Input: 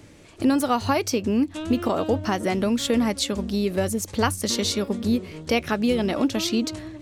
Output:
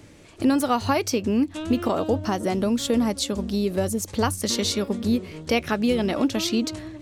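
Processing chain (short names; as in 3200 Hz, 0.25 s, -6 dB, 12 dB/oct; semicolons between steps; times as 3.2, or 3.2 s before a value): 1.98–4.33 dynamic EQ 2100 Hz, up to -6 dB, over -41 dBFS, Q 1.2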